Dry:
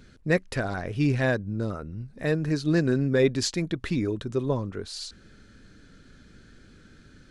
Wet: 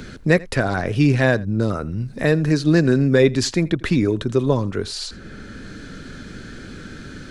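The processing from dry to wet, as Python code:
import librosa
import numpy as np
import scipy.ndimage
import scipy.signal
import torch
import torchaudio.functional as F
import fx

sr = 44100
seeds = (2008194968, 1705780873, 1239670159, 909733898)

y = x + 10.0 ** (-23.0 / 20.0) * np.pad(x, (int(83 * sr / 1000.0), 0))[:len(x)]
y = fx.band_squash(y, sr, depth_pct=40)
y = y * 10.0 ** (8.0 / 20.0)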